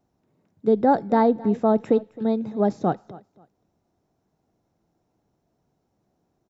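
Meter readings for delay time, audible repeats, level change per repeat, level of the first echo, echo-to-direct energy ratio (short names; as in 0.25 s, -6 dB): 0.265 s, 2, -12.5 dB, -20.0 dB, -20.0 dB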